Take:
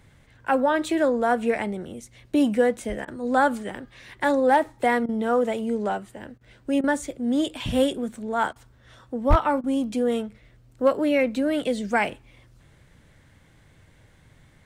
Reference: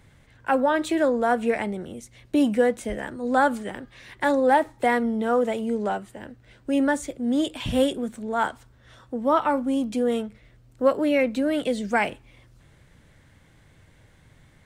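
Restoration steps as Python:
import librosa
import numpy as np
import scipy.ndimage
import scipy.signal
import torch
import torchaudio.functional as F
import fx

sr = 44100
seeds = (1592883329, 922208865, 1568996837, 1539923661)

y = fx.fix_declip(x, sr, threshold_db=-9.5)
y = fx.highpass(y, sr, hz=140.0, slope=24, at=(9.29, 9.41), fade=0.02)
y = fx.fix_interpolate(y, sr, at_s=(3.05, 5.06, 6.38, 6.81, 8.53, 9.61), length_ms=27.0)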